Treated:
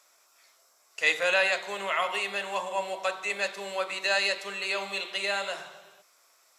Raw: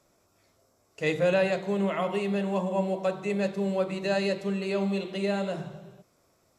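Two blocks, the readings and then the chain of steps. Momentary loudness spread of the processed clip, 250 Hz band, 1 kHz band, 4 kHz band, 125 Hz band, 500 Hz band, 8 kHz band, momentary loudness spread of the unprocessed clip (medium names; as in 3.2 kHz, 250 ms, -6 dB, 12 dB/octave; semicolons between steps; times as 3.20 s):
9 LU, -19.5 dB, +3.0 dB, +9.0 dB, under -20 dB, -5.5 dB, +9.0 dB, 6 LU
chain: high-pass 1.2 kHz 12 dB/octave; trim +9 dB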